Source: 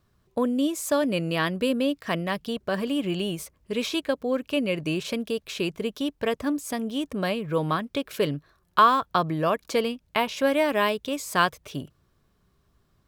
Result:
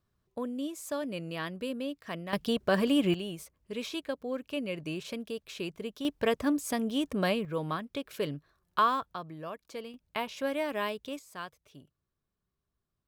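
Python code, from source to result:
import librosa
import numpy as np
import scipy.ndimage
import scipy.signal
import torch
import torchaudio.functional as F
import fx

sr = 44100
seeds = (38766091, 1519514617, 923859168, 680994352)

y = fx.gain(x, sr, db=fx.steps((0.0, -11.0), (2.33, 1.0), (3.14, -9.0), (6.05, -1.5), (7.45, -8.0), (9.14, -16.5), (9.94, -9.5), (11.19, -19.5)))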